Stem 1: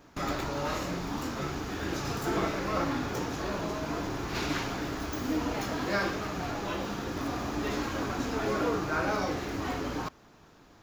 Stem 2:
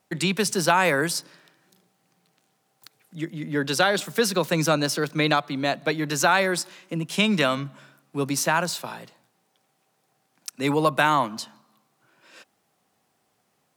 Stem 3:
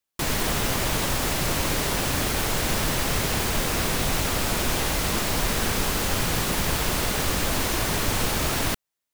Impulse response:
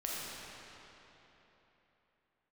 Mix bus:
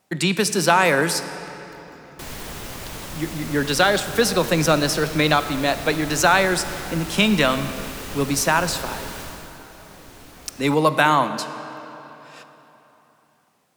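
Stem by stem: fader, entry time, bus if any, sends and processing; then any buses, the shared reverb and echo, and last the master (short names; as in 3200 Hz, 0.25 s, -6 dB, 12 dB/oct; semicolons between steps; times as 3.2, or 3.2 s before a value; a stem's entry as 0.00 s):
-11.0 dB, 0.70 s, no send, compressor, threshold -36 dBFS, peak gain reduction 11 dB
+2.0 dB, 0.00 s, send -12.5 dB, dry
9.2 s -9.5 dB -> 9.64 s -21.5 dB, 2.00 s, no send, dry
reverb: on, RT60 3.7 s, pre-delay 4 ms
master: dry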